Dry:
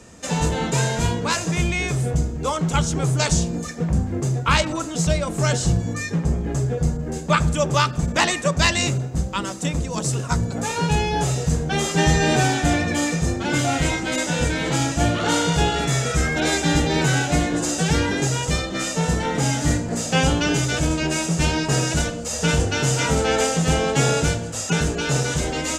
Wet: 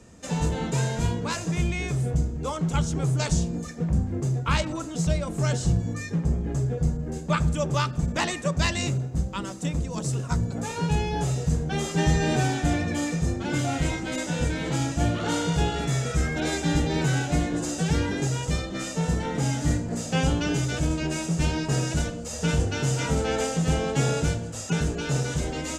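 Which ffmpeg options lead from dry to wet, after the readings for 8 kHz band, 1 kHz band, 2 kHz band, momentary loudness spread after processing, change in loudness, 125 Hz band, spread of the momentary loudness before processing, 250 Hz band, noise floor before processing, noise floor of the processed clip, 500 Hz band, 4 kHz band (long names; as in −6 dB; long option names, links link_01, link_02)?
−8.5 dB, −7.5 dB, −8.0 dB, 5 LU, −5.0 dB, −3.0 dB, 5 LU, −4.0 dB, −30 dBFS, −35 dBFS, −6.0 dB, −8.5 dB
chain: -af "lowshelf=frequency=410:gain=6,volume=-8.5dB"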